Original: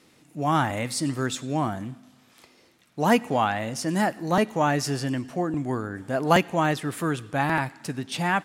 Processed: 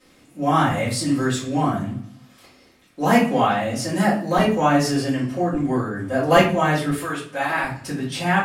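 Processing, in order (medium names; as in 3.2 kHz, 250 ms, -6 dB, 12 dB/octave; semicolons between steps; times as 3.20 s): 6.90–7.64 s: high-pass 750 Hz 6 dB/octave; simulated room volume 33 m³, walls mixed, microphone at 2.1 m; trim -7 dB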